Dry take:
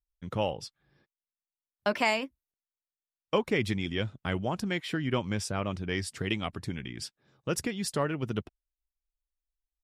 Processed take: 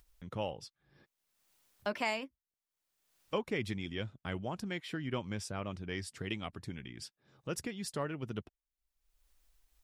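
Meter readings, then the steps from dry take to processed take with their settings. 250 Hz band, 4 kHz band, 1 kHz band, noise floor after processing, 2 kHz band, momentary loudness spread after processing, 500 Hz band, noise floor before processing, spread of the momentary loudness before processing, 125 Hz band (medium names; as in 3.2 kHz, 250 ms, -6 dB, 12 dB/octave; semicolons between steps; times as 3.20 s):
-7.5 dB, -7.5 dB, -7.5 dB, under -85 dBFS, -7.5 dB, 10 LU, -7.5 dB, under -85 dBFS, 10 LU, -7.5 dB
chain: upward compressor, threshold -39 dBFS; trim -7.5 dB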